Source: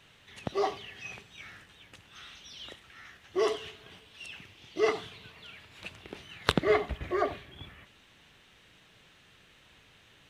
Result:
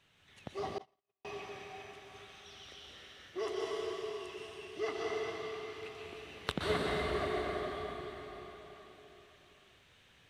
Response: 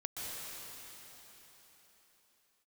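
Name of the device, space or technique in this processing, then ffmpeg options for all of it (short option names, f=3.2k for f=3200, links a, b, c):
cathedral: -filter_complex "[1:a]atrim=start_sample=2205[a];[0:a][a]afir=irnorm=-1:irlink=0,asettb=1/sr,asplit=3[b][c][d];[b]atrim=end=0.784[e];[c]atrim=start=0.78:end=1.25,asetpts=PTS-STARTPTS,afade=t=in:d=0.004:c=qsin,afade=t=out:st=0.466:d=0.004:c=qsin,agate=range=-54dB:threshold=-28dB:ratio=16:detection=peak[f];[d]atrim=start=1.246[g];[e][f]acrossfade=d=0.004:c1=hsin:c2=qsin[h];[h][g]acrossfade=d=0.004:c1=qsin:c2=hsin,volume=-6.5dB"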